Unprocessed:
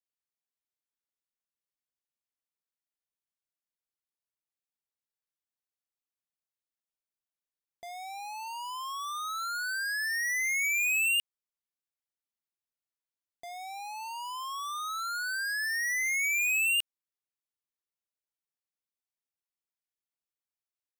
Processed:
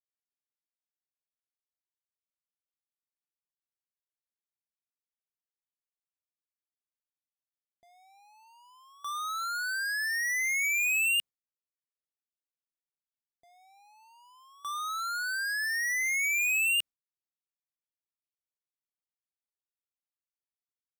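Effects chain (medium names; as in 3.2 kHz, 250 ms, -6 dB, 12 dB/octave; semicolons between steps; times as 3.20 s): gate with hold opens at -36 dBFS; bass shelf 420 Hz +10.5 dB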